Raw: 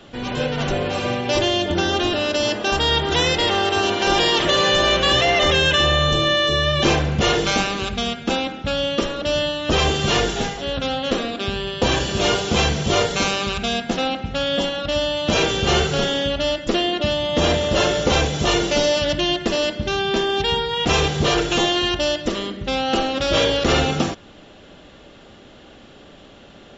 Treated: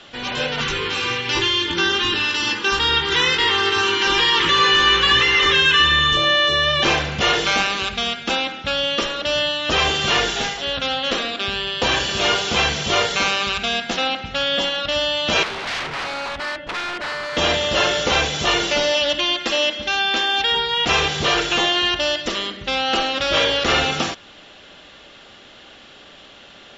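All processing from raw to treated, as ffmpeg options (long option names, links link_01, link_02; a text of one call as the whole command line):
ffmpeg -i in.wav -filter_complex "[0:a]asettb=1/sr,asplit=3[link_01][link_02][link_03];[link_01]atrim=end=0.604[link_04];[link_02]atrim=start=0.6:end=6.17,asetpts=PTS-STARTPTS,afade=type=in:duration=0.004:curve=qsin,afade=type=out:start_time=5.566:duration=0.004:curve=qsin,asuperstop=centerf=660:order=4:qfactor=1.7,aphaser=in_gain=1:out_gain=1:delay=3.8:decay=0.23:speed=1.3:type=triangular,asplit=2[link_05][link_06];[link_06]adelay=18,volume=-6dB[link_07];[link_05][link_07]amix=inputs=2:normalize=0,atrim=end_sample=245637[link_08];[link_03]atrim=start=6.166[link_09];[link_04][link_08]acrossfade=duration=0.004:curve1=hsin:curve2=qsin[link_10];[link_10][link_09]acrossfade=duration=0.004:curve1=qsin:curve2=hsin,asettb=1/sr,asplit=3[link_11][link_12][link_13];[link_11]atrim=end=15.434[link_14];[link_12]atrim=start=15.43:end=17.37,asetpts=PTS-STARTPTS,afade=type=in:duration=0.004:curve=qsin,afade=type=out:start_time=1.936:duration=0.004:curve=qsin,lowpass=1600,bandreject=frequency=1200:width=27,aeval=exprs='0.0668*(abs(mod(val(0)/0.0668+3,4)-2)-1)':channel_layout=same[link_15];[link_13]atrim=start=17.366[link_16];[link_14][link_15]acrossfade=duration=0.004:curve1=hsin:curve2=qsin[link_17];[link_17][link_16]acrossfade=duration=0.004:curve1=qsin:curve2=hsin,asettb=1/sr,asplit=3[link_18][link_19][link_20];[link_18]atrim=end=18.944[link_21];[link_19]atrim=start=18.94:end=20.55,asetpts=PTS-STARTPTS,afade=type=in:duration=0.004:curve=qsin,afade=type=out:start_time=1.606:duration=0.004:curve=qsin,lowshelf=frequency=210:gain=-9,aecho=1:1:3.7:0.53,atrim=end_sample=71001[link_22];[link_20]atrim=start=20.546[link_23];[link_21][link_22]acrossfade=duration=0.004:curve1=hsin:curve2=qsin[link_24];[link_24][link_23]acrossfade=duration=0.004:curve1=qsin:curve2=hsin,acrossover=split=2700[link_25][link_26];[link_26]acompressor=threshold=-28dB:ratio=4:attack=1:release=60[link_27];[link_25][link_27]amix=inputs=2:normalize=0,lowpass=6200,tiltshelf=frequency=770:gain=-7.5" out.wav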